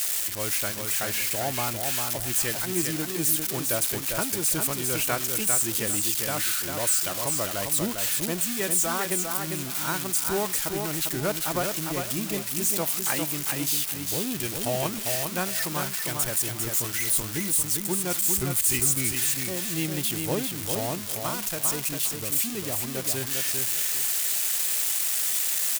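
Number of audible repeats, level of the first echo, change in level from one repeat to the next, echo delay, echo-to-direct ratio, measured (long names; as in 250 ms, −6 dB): 2, −5.0 dB, −12.0 dB, 400 ms, −4.5 dB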